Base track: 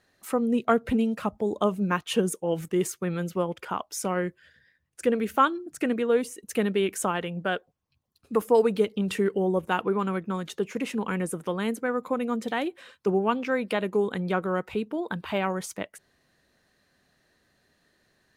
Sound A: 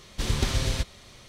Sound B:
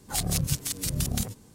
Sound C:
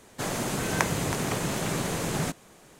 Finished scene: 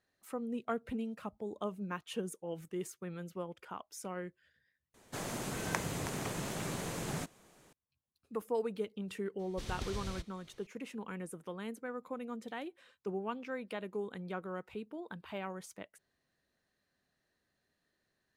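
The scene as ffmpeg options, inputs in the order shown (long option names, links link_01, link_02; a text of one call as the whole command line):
ffmpeg -i bed.wav -i cue0.wav -i cue1.wav -i cue2.wav -filter_complex "[0:a]volume=-14dB,asplit=2[link_01][link_02];[link_01]atrim=end=4.944[link_03];[3:a]atrim=end=2.79,asetpts=PTS-STARTPTS,volume=-9.5dB[link_04];[link_02]atrim=start=7.726[link_05];[1:a]atrim=end=1.28,asetpts=PTS-STARTPTS,volume=-15.5dB,afade=type=in:duration=0.004:curve=hsin,afade=type=out:start_time=1.276:duration=0.004:curve=hsin,adelay=9390[link_06];[link_03][link_04]acrossfade=duration=0.004:curve1=hsin:curve2=hsin[link_07];[link_07][link_05]acrossfade=duration=0.004:curve1=hsin:curve2=hsin[link_08];[link_08][link_06]amix=inputs=2:normalize=0" out.wav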